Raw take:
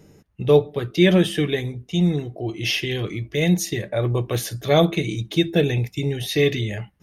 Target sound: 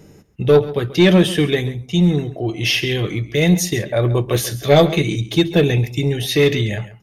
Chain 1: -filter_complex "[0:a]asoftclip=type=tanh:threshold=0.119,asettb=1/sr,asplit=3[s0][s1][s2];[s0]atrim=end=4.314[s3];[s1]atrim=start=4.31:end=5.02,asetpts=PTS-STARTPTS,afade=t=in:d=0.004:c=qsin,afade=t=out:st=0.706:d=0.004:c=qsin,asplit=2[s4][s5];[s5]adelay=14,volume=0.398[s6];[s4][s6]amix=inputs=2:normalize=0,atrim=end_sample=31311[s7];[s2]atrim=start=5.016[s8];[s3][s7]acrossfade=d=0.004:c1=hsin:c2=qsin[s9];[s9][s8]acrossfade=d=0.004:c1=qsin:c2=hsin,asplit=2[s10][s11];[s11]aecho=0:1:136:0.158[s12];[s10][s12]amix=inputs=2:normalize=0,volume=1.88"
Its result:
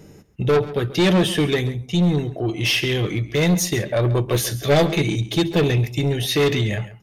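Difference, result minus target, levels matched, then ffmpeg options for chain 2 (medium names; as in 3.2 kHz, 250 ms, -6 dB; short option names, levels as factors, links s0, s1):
saturation: distortion +9 dB
-filter_complex "[0:a]asoftclip=type=tanh:threshold=0.335,asettb=1/sr,asplit=3[s0][s1][s2];[s0]atrim=end=4.314[s3];[s1]atrim=start=4.31:end=5.02,asetpts=PTS-STARTPTS,afade=t=in:d=0.004:c=qsin,afade=t=out:st=0.706:d=0.004:c=qsin,asplit=2[s4][s5];[s5]adelay=14,volume=0.398[s6];[s4][s6]amix=inputs=2:normalize=0,atrim=end_sample=31311[s7];[s2]atrim=start=5.016[s8];[s3][s7]acrossfade=d=0.004:c1=hsin:c2=qsin[s9];[s9][s8]acrossfade=d=0.004:c1=qsin:c2=hsin,asplit=2[s10][s11];[s11]aecho=0:1:136:0.158[s12];[s10][s12]amix=inputs=2:normalize=0,volume=1.88"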